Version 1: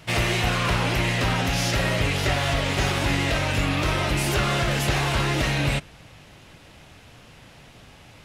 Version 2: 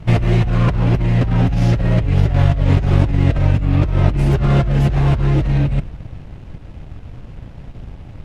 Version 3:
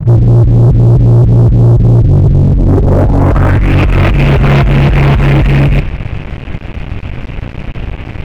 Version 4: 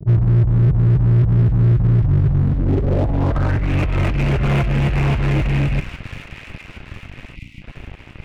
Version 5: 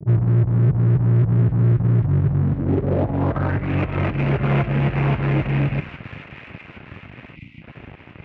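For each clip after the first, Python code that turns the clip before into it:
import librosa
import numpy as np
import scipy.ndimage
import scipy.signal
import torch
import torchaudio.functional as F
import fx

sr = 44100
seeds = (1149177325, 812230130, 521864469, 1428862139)

y1 = fx.leveller(x, sr, passes=2)
y1 = fx.tilt_eq(y1, sr, slope=-4.5)
y1 = fx.over_compress(y1, sr, threshold_db=-9.0, ratio=-1.0)
y1 = y1 * librosa.db_to_amplitude(-5.5)
y2 = fx.leveller(y1, sr, passes=3)
y2 = fx.filter_sweep_lowpass(y2, sr, from_hz=140.0, to_hz=2500.0, start_s=2.23, end_s=3.73, q=3.1)
y2 = fx.leveller(y2, sr, passes=3)
y2 = y2 * librosa.db_to_amplitude(-8.5)
y3 = fx.power_curve(y2, sr, exponent=2.0)
y3 = fx.echo_wet_highpass(y3, sr, ms=815, feedback_pct=59, hz=1700.0, wet_db=-7.0)
y3 = fx.spec_box(y3, sr, start_s=7.36, length_s=0.26, low_hz=340.0, high_hz=1900.0, gain_db=-20)
y3 = y3 * librosa.db_to_amplitude(-6.5)
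y4 = fx.bandpass_edges(y3, sr, low_hz=110.0, high_hz=2400.0)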